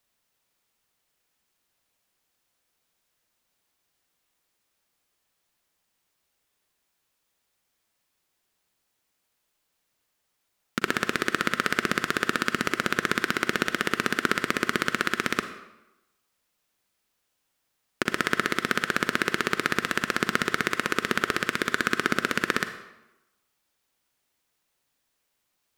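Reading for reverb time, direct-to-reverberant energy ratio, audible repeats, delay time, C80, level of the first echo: 0.95 s, 9.0 dB, no echo audible, no echo audible, 12.5 dB, no echo audible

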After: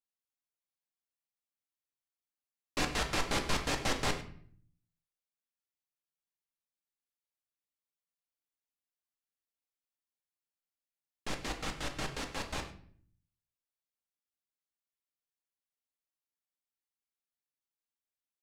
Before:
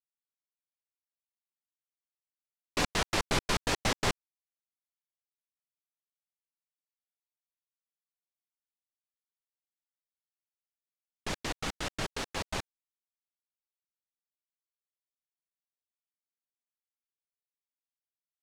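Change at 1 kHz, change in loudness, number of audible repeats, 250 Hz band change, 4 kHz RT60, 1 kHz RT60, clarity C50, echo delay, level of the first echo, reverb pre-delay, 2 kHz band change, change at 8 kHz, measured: −2.5 dB, −2.5 dB, 1, −2.0 dB, 0.40 s, 0.50 s, 9.5 dB, 101 ms, −16.0 dB, 4 ms, −2.5 dB, −3.0 dB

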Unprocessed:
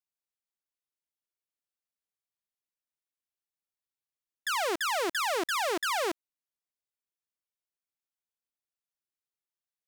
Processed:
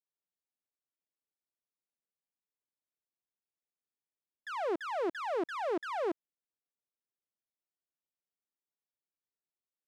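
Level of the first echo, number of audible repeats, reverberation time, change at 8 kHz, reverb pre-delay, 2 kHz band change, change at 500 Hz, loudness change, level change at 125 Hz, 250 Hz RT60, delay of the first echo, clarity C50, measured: no echo audible, no echo audible, no reverb audible, below −20 dB, no reverb audible, −11.0 dB, −1.0 dB, −6.0 dB, can't be measured, no reverb audible, no echo audible, no reverb audible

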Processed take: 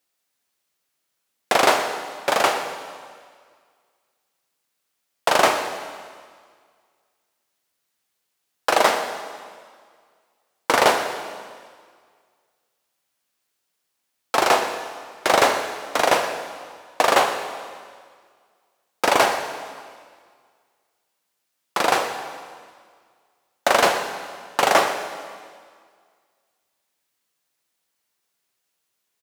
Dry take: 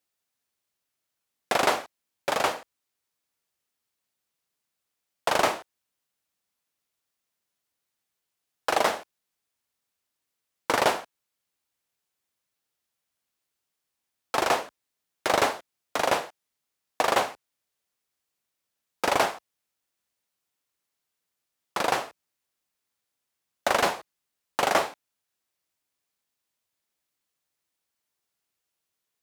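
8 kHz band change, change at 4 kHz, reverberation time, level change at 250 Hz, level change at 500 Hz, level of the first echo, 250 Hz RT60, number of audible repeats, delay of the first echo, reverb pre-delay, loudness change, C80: +7.0 dB, +7.0 dB, 1.9 s, +5.5 dB, +6.5 dB, −16.0 dB, 1.9 s, 1, 121 ms, 9 ms, +5.5 dB, 8.0 dB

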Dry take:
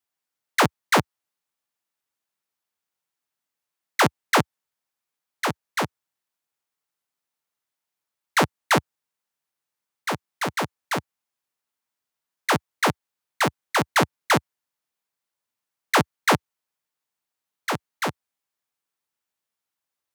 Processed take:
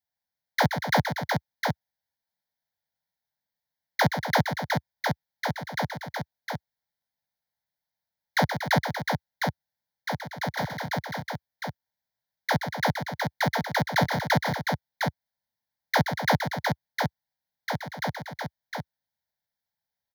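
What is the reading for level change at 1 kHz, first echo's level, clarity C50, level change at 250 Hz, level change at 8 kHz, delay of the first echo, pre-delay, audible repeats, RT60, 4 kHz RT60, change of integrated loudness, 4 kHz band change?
−2.5 dB, −8.5 dB, no reverb audible, −1.5 dB, −8.5 dB, 125 ms, no reverb audible, 3, no reverb audible, no reverb audible, −4.5 dB, −3.0 dB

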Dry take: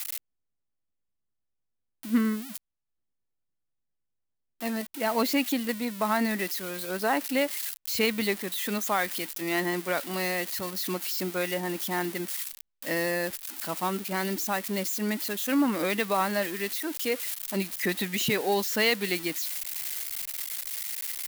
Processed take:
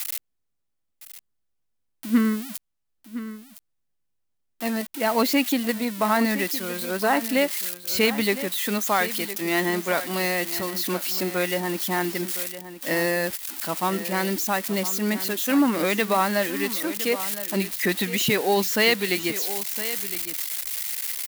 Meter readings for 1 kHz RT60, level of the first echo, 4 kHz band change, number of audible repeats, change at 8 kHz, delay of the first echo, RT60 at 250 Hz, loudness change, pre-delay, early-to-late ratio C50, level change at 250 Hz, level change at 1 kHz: no reverb audible, −13.0 dB, +4.5 dB, 1, +4.5 dB, 1,012 ms, no reverb audible, +4.5 dB, no reverb audible, no reverb audible, +4.5 dB, +4.5 dB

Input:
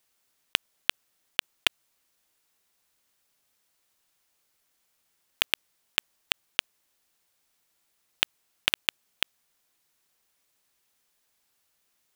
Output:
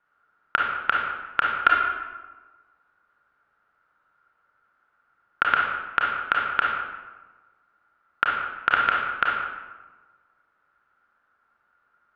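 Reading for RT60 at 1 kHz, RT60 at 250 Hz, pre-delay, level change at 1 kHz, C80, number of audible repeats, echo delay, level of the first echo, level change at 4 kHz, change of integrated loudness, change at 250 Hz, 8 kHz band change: 1.3 s, 1.4 s, 28 ms, +20.0 dB, 3.0 dB, no echo audible, no echo audible, no echo audible, −8.5 dB, +5.5 dB, +5.0 dB, below −25 dB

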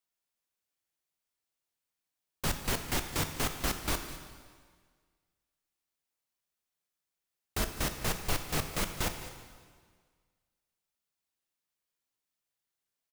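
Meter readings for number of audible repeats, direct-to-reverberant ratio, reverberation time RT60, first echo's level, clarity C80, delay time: 1, 6.0 dB, 1.7 s, −16.0 dB, 8.5 dB, 207 ms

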